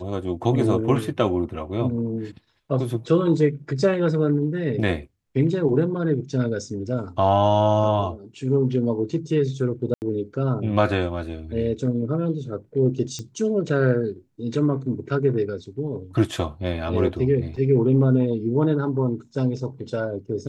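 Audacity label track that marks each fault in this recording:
9.940000	10.020000	gap 79 ms
13.190000	13.190000	pop -19 dBFS
17.560000	17.560000	gap 3.7 ms

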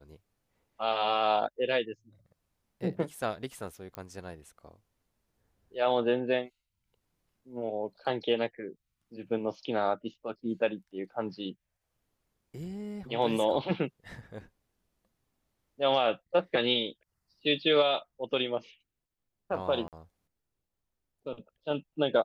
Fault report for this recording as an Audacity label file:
3.950000	3.950000	pop -24 dBFS
19.880000	19.930000	gap 48 ms

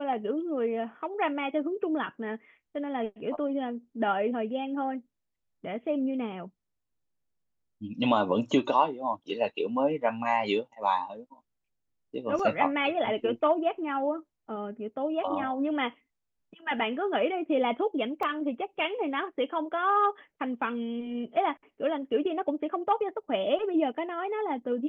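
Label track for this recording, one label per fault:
12.390000	12.390000	gap 3.7 ms
18.230000	18.230000	gap 2.3 ms

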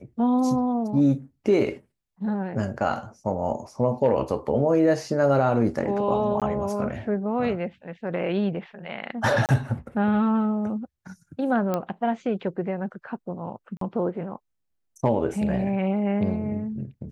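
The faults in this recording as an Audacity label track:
6.400000	6.420000	gap 17 ms
9.460000	9.490000	gap 28 ms
11.740000	11.740000	pop -13 dBFS
13.770000	13.810000	gap 43 ms

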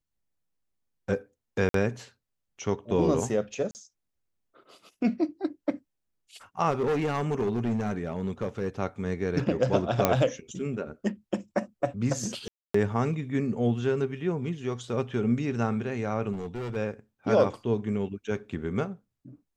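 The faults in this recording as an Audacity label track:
1.690000	1.740000	gap 53 ms
3.710000	3.750000	gap 39 ms
6.700000	8.690000	clipped -23 dBFS
10.050000	10.050000	pop -6 dBFS
12.480000	12.740000	gap 0.264 s
16.320000	16.770000	clipped -30.5 dBFS

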